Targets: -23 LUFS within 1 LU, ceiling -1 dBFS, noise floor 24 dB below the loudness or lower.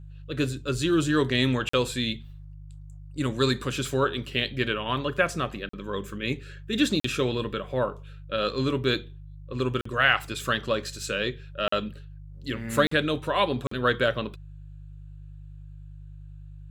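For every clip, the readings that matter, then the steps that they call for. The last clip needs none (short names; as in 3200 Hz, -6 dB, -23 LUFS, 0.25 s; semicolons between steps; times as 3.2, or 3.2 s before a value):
dropouts 7; longest dropout 44 ms; hum 50 Hz; harmonics up to 150 Hz; hum level -41 dBFS; loudness -27.0 LUFS; peak -6.0 dBFS; loudness target -23.0 LUFS
-> interpolate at 1.69/5.69/7/9.81/11.68/12.87/13.67, 44 ms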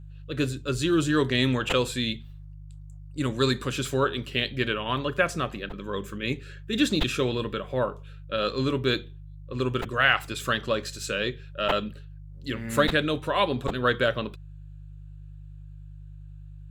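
dropouts 0; hum 50 Hz; harmonics up to 150 Hz; hum level -41 dBFS
-> de-hum 50 Hz, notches 3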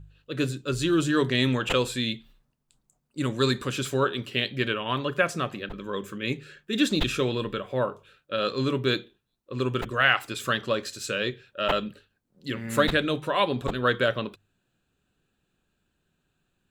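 hum none; loudness -27.0 LUFS; peak -6.0 dBFS; loudness target -23.0 LUFS
-> gain +4 dB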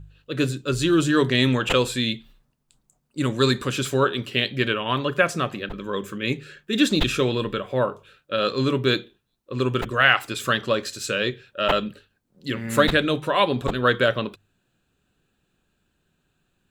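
loudness -23.0 LUFS; peak -2.0 dBFS; noise floor -72 dBFS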